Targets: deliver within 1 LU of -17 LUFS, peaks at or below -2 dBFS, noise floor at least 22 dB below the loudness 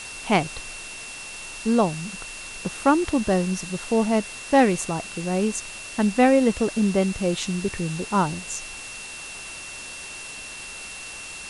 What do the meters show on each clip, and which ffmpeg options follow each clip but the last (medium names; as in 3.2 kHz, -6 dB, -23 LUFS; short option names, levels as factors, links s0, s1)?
steady tone 2.7 kHz; tone level -38 dBFS; noise floor -38 dBFS; noise floor target -47 dBFS; loudness -25.0 LUFS; peak level -4.5 dBFS; loudness target -17.0 LUFS
-> -af "bandreject=f=2700:w=30"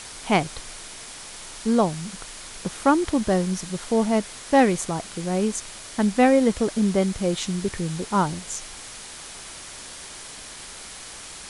steady tone not found; noise floor -40 dBFS; noise floor target -46 dBFS
-> -af "afftdn=nr=6:nf=-40"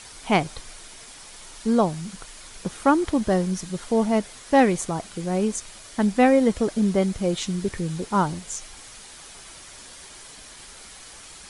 noise floor -44 dBFS; noise floor target -46 dBFS
-> -af "afftdn=nr=6:nf=-44"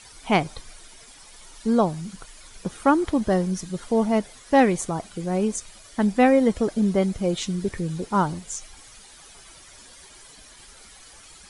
noise floor -48 dBFS; loudness -23.5 LUFS; peak level -5.0 dBFS; loudness target -17.0 LUFS
-> -af "volume=2.11,alimiter=limit=0.794:level=0:latency=1"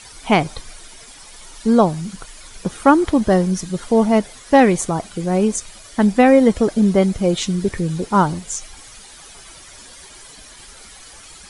loudness -17.0 LUFS; peak level -2.0 dBFS; noise floor -42 dBFS